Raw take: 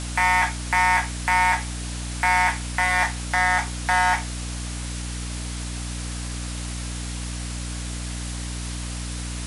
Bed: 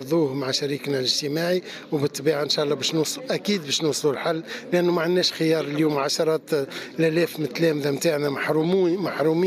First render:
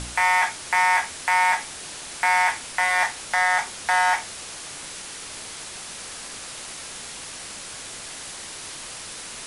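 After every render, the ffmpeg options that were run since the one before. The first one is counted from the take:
-af "bandreject=f=60:t=h:w=4,bandreject=f=120:t=h:w=4,bandreject=f=180:t=h:w=4,bandreject=f=240:t=h:w=4,bandreject=f=300:t=h:w=4"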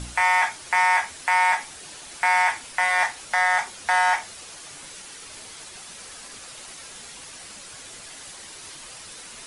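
-af "afftdn=nr=7:nf=-38"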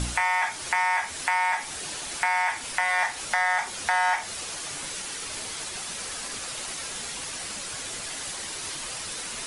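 -filter_complex "[0:a]acompressor=threshold=0.0501:ratio=5,asplit=2[s0][s1];[s1]alimiter=limit=0.0708:level=0:latency=1,volume=1.12[s2];[s0][s2]amix=inputs=2:normalize=0"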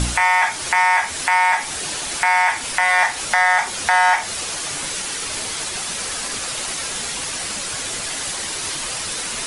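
-af "volume=2.66,alimiter=limit=0.708:level=0:latency=1"

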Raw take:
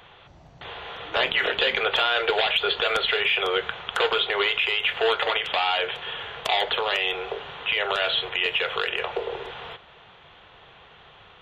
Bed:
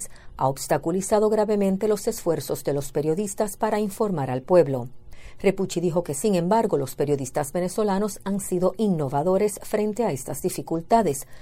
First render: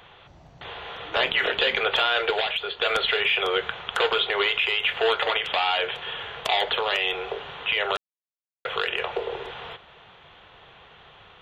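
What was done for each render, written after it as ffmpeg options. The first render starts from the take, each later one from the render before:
-filter_complex "[0:a]asplit=4[s0][s1][s2][s3];[s0]atrim=end=2.81,asetpts=PTS-STARTPTS,afade=t=out:st=2.18:d=0.63:silence=0.281838[s4];[s1]atrim=start=2.81:end=7.97,asetpts=PTS-STARTPTS,afade=t=in:d=0.004:c=hsin:silence=0.281838,afade=t=out:st=5.156:d=0.004:c=hsin[s5];[s2]atrim=start=7.97:end=8.65,asetpts=PTS-STARTPTS,volume=0[s6];[s3]atrim=start=8.65,asetpts=PTS-STARTPTS,afade=t=in:d=0.004:c=hsin[s7];[s4][s5][s6][s7]concat=n=4:v=0:a=1"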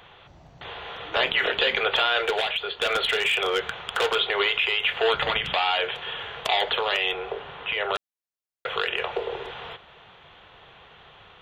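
-filter_complex "[0:a]asettb=1/sr,asplit=3[s0][s1][s2];[s0]atrim=end=2.264[s3];[s1]atrim=start=2.26:end=4.15,asetpts=PTS-STARTPTS,afade=t=in:d=0.004:c=qsin,afade=t=out:st=1.886:d=0.004:c=qsin,asoftclip=type=hard:threshold=0.133[s4];[s2]atrim=start=4.146[s5];[s3][s4]acrossfade=d=0.004:c1=hsin:c2=qsin[s6];[s6][s5]acrossfade=d=0.004:c1=qsin:c2=hsin,asettb=1/sr,asplit=3[s7][s8][s9];[s7]atrim=end=5.144[s10];[s8]atrim=start=5.14:end=5.54,asetpts=PTS-STARTPTS,afade=t=in:d=0.004:c=qsin,afade=t=out:st=0.396:d=0.004:c=qsin,lowshelf=f=290:t=q:w=1.5:g=11.5[s11];[s9]atrim=start=5.536[s12];[s10][s11]acrossfade=d=0.004:c1=hsin:c2=qsin[s13];[s13][s12]acrossfade=d=0.004:c1=qsin:c2=hsin,asettb=1/sr,asplit=3[s14][s15][s16];[s14]atrim=end=7.134[s17];[s15]atrim=start=7.13:end=7.94,asetpts=PTS-STARTPTS,afade=t=in:d=0.004:c=qsin,afade=t=out:st=0.806:d=0.004:c=qsin,highshelf=f=3600:g=-10.5[s18];[s16]atrim=start=7.936[s19];[s17][s18]acrossfade=d=0.004:c1=hsin:c2=qsin[s20];[s20][s19]acrossfade=d=0.004:c1=qsin:c2=hsin"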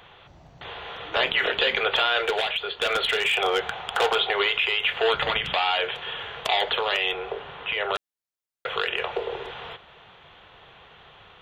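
-filter_complex "[0:a]asettb=1/sr,asplit=3[s0][s1][s2];[s0]atrim=end=3.334[s3];[s1]atrim=start=3.33:end=4.33,asetpts=PTS-STARTPTS,afade=t=in:d=0.004:c=qsin,afade=t=out:st=0.996:d=0.004:c=qsin,equalizer=f=770:w=3.4:g=9.5[s4];[s2]atrim=start=4.326[s5];[s3][s4]acrossfade=d=0.004:c1=hsin:c2=qsin[s6];[s6][s5]acrossfade=d=0.004:c1=qsin:c2=hsin"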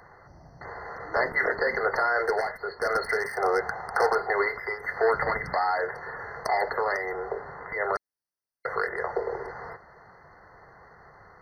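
-af "afftfilt=real='re*eq(mod(floor(b*sr/1024/2100),2),0)':imag='im*eq(mod(floor(b*sr/1024/2100),2),0)':win_size=1024:overlap=0.75"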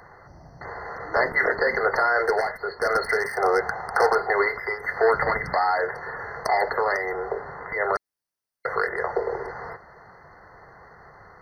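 -af "volume=1.5"

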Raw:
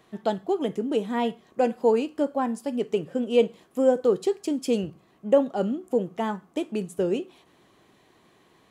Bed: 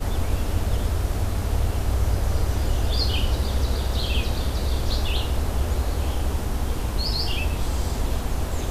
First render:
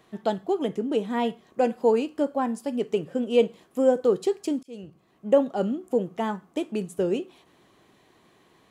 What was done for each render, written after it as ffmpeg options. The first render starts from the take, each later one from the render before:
-filter_complex "[0:a]asettb=1/sr,asplit=3[s0][s1][s2];[s0]atrim=end=0.674[s3];[s1]atrim=start=0.67:end=1.11,asetpts=PTS-STARTPTS,afade=t=in:d=0.004:c=qsin,afade=t=out:st=0.436:d=0.004:c=qsin,highshelf=f=8700:g=-5.5[s4];[s2]atrim=start=1.106[s5];[s3][s4]acrossfade=d=0.004:c1=hsin:c2=qsin[s6];[s6][s5]acrossfade=d=0.004:c1=qsin:c2=hsin,asplit=2[s7][s8];[s7]atrim=end=4.63,asetpts=PTS-STARTPTS,afade=t=out:st=4.626:d=0.004:c=hsin[s9];[s8]atrim=start=4.63,asetpts=PTS-STARTPTS,afade=t=in:d=0.7[s10];[s9][s10]concat=n=2:v=0:a=1"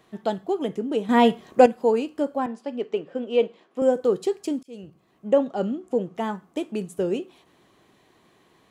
-filter_complex "[0:a]asettb=1/sr,asplit=3[s0][s1][s2];[s0]atrim=end=2.464[s3];[s1]atrim=start=2.46:end=3.82,asetpts=PTS-STARTPTS,afade=t=in:d=0.004:c=qsin,afade=t=out:st=1.356:d=0.004:c=qsin,highpass=280,lowpass=3900[s4];[s2]atrim=start=3.816[s5];[s3][s4]acrossfade=d=0.004:c1=hsin:c2=qsin[s6];[s6][s5]acrossfade=d=0.004:c1=qsin:c2=hsin,asettb=1/sr,asplit=3[s7][s8][s9];[s7]atrim=end=5.284[s10];[s8]atrim=start=5.28:end=6.15,asetpts=PTS-STARTPTS,afade=t=in:d=0.004:c=qsin,afade=t=out:st=0.866:d=0.004:c=qsin,lowpass=7700[s11];[s9]atrim=start=6.146[s12];[s10][s11]acrossfade=d=0.004:c1=hsin:c2=qsin[s13];[s13][s12]acrossfade=d=0.004:c1=qsin:c2=hsin,asplit=3[s14][s15][s16];[s14]atrim=end=1.092[s17];[s15]atrim=start=1.088:end=1.662,asetpts=PTS-STARTPTS,volume=2.82[s18];[s16]atrim=start=1.658[s19];[s17][s18]acrossfade=d=0.004:c1=hsin:c2=hsin[s20];[s20][s19]acrossfade=d=0.004:c1=hsin:c2=hsin"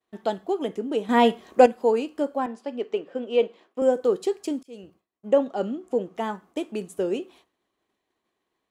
-af "agate=range=0.0224:threshold=0.00447:ratio=3:detection=peak,equalizer=f=140:w=1.9:g=-12.5"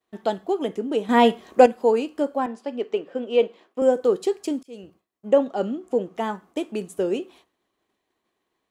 -af "volume=1.26,alimiter=limit=0.794:level=0:latency=1"

